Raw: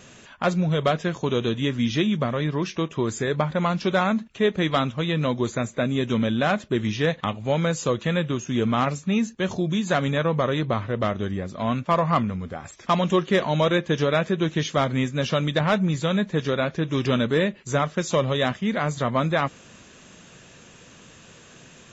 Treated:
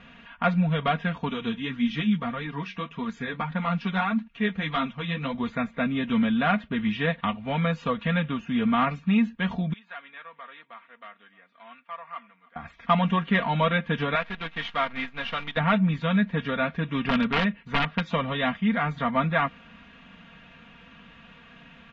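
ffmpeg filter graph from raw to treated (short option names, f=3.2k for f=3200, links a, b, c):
-filter_complex "[0:a]asettb=1/sr,asplit=3[a][b][c];[a]atrim=end=1.294[d];[b]atrim=start=1.29:end=5.35,asetpts=PTS-STARTPTS,afade=t=in:d=0.004:c=qsin,afade=t=out:st=4.056:d=0.004:c=qsin,bandreject=f=610:w=10,flanger=delay=3.1:depth=8.5:regen=21:speed=1.7:shape=triangular,lowpass=f=6.7k:t=q:w=2.6[e];[c]atrim=start=5.346[f];[d][e]acrossfade=d=0.004:c1=hsin:c2=qsin[g];[g][f]acrossfade=d=0.004:c1=qsin:c2=hsin,asettb=1/sr,asplit=3[h][i][j];[h]atrim=end=9.734[k];[i]atrim=start=9.73:end=12.56,asetpts=PTS-STARTPTS,afade=t=in:d=0.004:c=qsin,afade=t=out:st=2.826:d=0.004:c=qsin,highpass=250,lowpass=2.2k,aderivative,aecho=1:1:309:0.0668,atrim=end_sample=124803[l];[j]atrim=start=12.556[m];[k][l]acrossfade=d=0.004:c1=hsin:c2=qsin[n];[n][m]acrossfade=d=0.004:c1=qsin:c2=hsin,asettb=1/sr,asplit=3[o][p][q];[o]atrim=end=14.154[r];[p]atrim=start=14.15:end=15.57,asetpts=PTS-STARTPTS,afade=t=in:d=0.004:c=qsin,afade=t=out:st=1.416:d=0.004:c=qsin,highpass=f=770:p=1,acrusher=bits=6:dc=4:mix=0:aa=0.000001[s];[q]atrim=start=15.566[t];[r][s]acrossfade=d=0.004:c1=hsin:c2=qsin[u];[u][t]acrossfade=d=0.004:c1=qsin:c2=hsin,asettb=1/sr,asplit=3[v][w][x];[v]atrim=end=17.004[y];[w]atrim=start=17:end=18.06,asetpts=PTS-STARTPTS,afade=t=in:d=0.004:c=qsin,afade=t=out:st=1.056:d=0.004:c=qsin,lowpass=4.3k,aeval=exprs='(mod(4.73*val(0)+1,2)-1)/4.73':c=same[z];[x]atrim=start=18.056[aa];[y][z]acrossfade=d=0.004:c1=hsin:c2=qsin[ab];[ab][aa]acrossfade=d=0.004:c1=qsin:c2=hsin,lowpass=f=3k:w=0.5412,lowpass=f=3k:w=1.3066,equalizer=f=410:w=1.4:g=-12.5,aecho=1:1:4.3:0.77"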